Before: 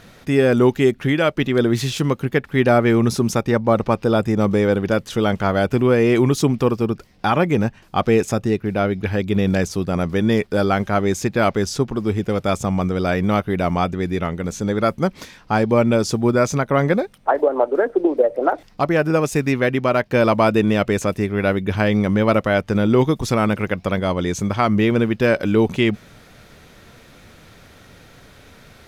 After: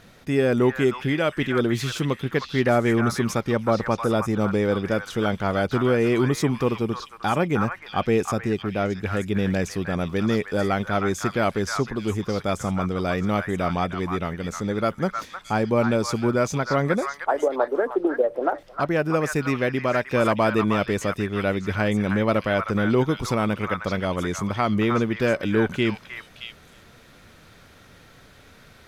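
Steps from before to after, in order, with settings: delay with a stepping band-pass 0.311 s, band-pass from 1400 Hz, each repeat 1.4 oct, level -1 dB; gain -5 dB

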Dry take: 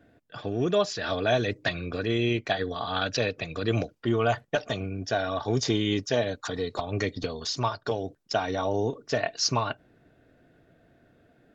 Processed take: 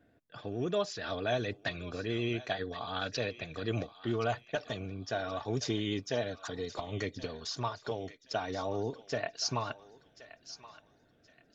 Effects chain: thinning echo 1.074 s, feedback 39%, high-pass 1200 Hz, level -13 dB; vibrato 11 Hz 30 cents; gain -7.5 dB

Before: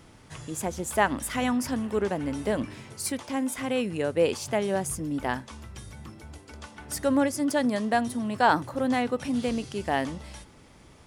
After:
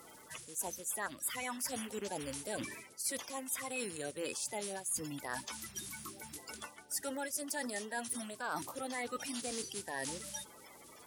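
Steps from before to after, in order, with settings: bin magnitudes rounded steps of 30 dB; in parallel at -2.5 dB: limiter -19 dBFS, peak gain reduction 10.5 dB; on the sum: crackle 130/s -54 dBFS; RIAA curve recording; added harmonics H 4 -26 dB, 6 -30 dB, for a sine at -2 dBFS; reverse; compressor 4:1, threshold -32 dBFS, peak gain reduction 17.5 dB; reverse; gain -6 dB

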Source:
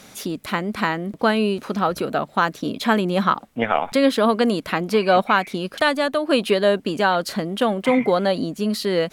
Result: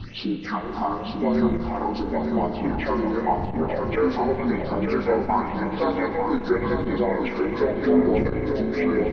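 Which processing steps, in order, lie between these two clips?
inharmonic rescaling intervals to 75%; wind noise 240 Hz -34 dBFS; in parallel at +2.5 dB: compressor, threshold -26 dBFS, peak gain reduction 13 dB; on the sum: phaser stages 6, 0.9 Hz, lowest notch 130–1900 Hz; on a send: feedback echo 0.898 s, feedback 43%, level -6 dB; on the sum: spring tank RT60 3 s, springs 35 ms, chirp 30 ms, DRR 6 dB; core saturation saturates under 170 Hz; gain -4.5 dB

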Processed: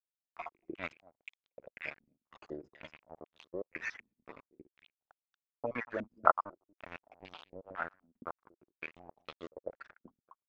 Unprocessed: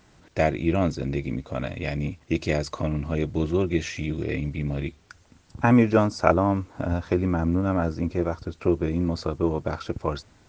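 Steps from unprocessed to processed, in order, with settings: random spectral dropouts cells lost 54%; differentiator; crossover distortion -49 dBFS; outdoor echo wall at 40 m, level -23 dB; stepped low-pass 4 Hz 240–3600 Hz; gain +8.5 dB

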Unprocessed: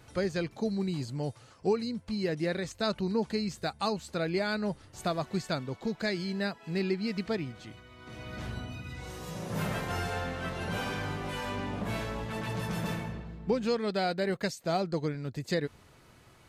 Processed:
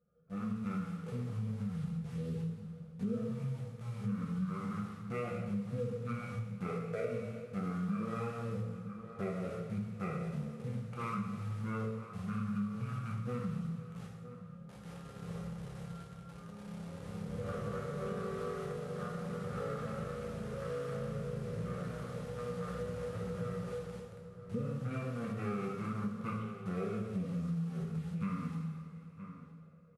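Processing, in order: Wiener smoothing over 25 samples; vowel filter u; resonator 100 Hz, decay 0.15 s, harmonics all, mix 70%; in parallel at -7 dB: sample gate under -57.5 dBFS; on the sum: outdoor echo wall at 91 m, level -15 dB; reverb, pre-delay 3 ms, DRR -2.5 dB; wide varispeed 0.55×; dynamic EQ 200 Hz, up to +4 dB, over -48 dBFS, Q 0.82; AGC gain up to 11 dB; low shelf 340 Hz -11.5 dB; compressor 3:1, threshold -41 dBFS, peak gain reduction 11 dB; gain +5.5 dB

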